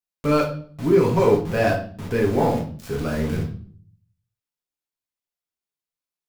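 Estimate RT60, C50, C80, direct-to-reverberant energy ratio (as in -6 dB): 0.45 s, 7.5 dB, 12.5 dB, -1.5 dB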